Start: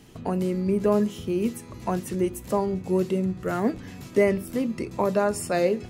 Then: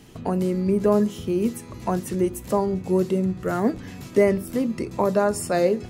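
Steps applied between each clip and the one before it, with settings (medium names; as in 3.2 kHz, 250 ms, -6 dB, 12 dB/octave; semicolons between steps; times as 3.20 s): dynamic bell 2.6 kHz, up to -5 dB, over -46 dBFS, Q 1.7; trim +2.5 dB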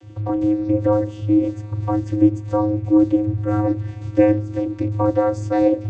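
vocoder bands 16, square 105 Hz; trim +5 dB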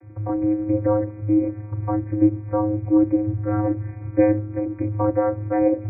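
brick-wall FIR low-pass 2.5 kHz; trim -2.5 dB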